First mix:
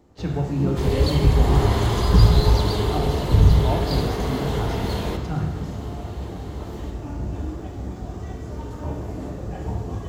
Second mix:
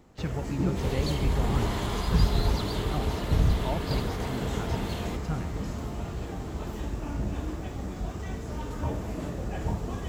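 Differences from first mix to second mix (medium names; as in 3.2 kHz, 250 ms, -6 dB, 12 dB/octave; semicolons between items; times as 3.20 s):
first sound +4.5 dB; second sound -5.0 dB; reverb: off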